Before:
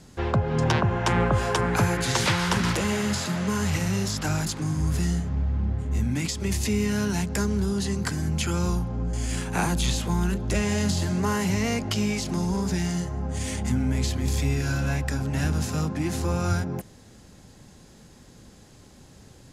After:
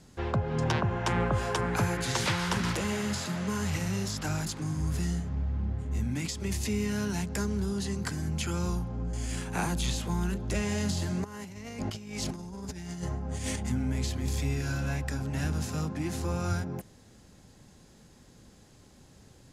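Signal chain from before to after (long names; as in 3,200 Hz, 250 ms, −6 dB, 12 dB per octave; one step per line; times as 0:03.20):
0:11.24–0:13.56: compressor whose output falls as the input rises −30 dBFS, ratio −0.5
level −5.5 dB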